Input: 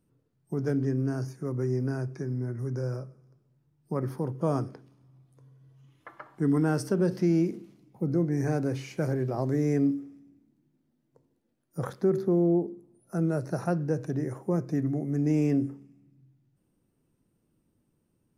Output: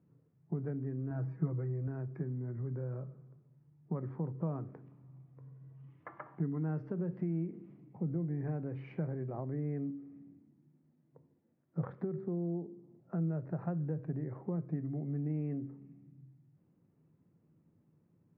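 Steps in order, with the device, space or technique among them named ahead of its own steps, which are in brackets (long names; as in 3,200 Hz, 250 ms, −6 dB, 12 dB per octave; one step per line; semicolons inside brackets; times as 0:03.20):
bass amplifier (downward compressor 4 to 1, threshold −39 dBFS, peak gain reduction 16 dB; loudspeaker in its box 85–2,100 Hz, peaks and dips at 100 Hz +5 dB, 160 Hz +9 dB, 1,500 Hz −4 dB)
0:01.10–0:01.88: comb filter 6.2 ms, depth 92%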